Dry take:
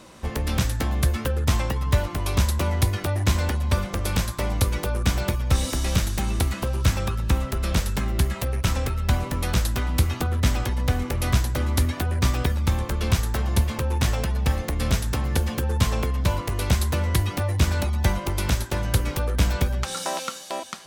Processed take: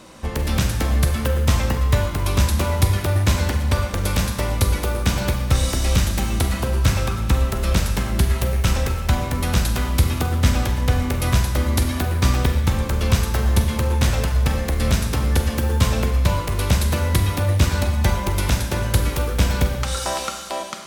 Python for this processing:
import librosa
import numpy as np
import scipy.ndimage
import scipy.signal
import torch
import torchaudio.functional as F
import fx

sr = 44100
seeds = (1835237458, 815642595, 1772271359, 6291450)

y = fx.rev_schroeder(x, sr, rt60_s=1.2, comb_ms=32, drr_db=5.0)
y = F.gain(torch.from_numpy(y), 2.5).numpy()